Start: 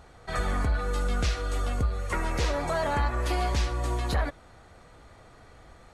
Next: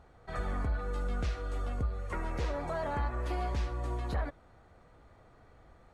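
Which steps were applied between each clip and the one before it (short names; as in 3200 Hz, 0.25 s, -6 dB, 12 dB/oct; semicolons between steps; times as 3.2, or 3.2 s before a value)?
high shelf 2600 Hz -11 dB; gain -6 dB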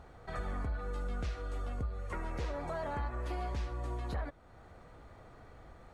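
compressor 1.5:1, threshold -55 dBFS, peak gain reduction 9.5 dB; gain +5 dB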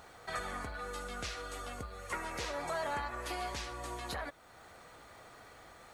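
tilt +3.5 dB/oct; gain +3.5 dB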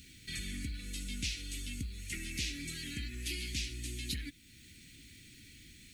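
elliptic band-stop 280–2400 Hz, stop band 60 dB; gain +6.5 dB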